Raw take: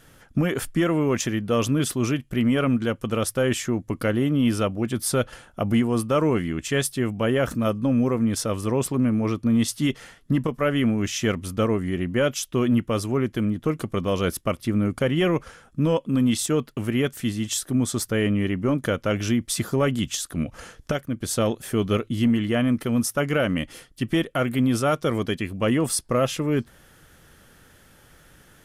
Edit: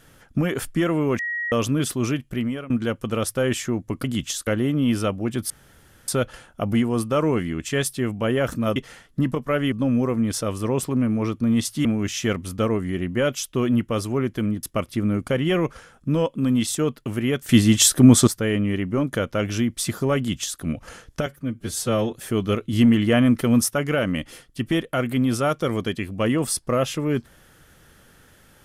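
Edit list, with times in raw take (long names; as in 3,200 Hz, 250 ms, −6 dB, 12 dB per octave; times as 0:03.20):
0:01.19–0:01.52: beep over 1,900 Hz −24 dBFS
0:02.27–0:02.70: fade out, to −22 dB
0:05.07: splice in room tone 0.58 s
0:09.88–0:10.84: move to 0:07.75
0:13.62–0:14.34: remove
0:17.20–0:17.98: clip gain +11 dB
0:19.88–0:20.31: duplicate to 0:04.04
0:20.97–0:21.55: time-stretch 1.5×
0:22.15–0:23.12: clip gain +4.5 dB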